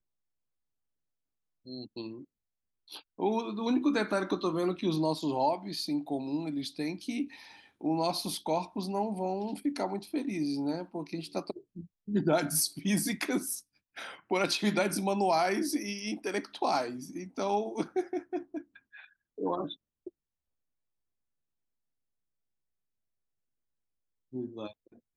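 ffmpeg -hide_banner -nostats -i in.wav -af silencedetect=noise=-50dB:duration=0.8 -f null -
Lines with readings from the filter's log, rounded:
silence_start: 0.00
silence_end: 1.66 | silence_duration: 1.66
silence_start: 20.09
silence_end: 24.33 | silence_duration: 4.24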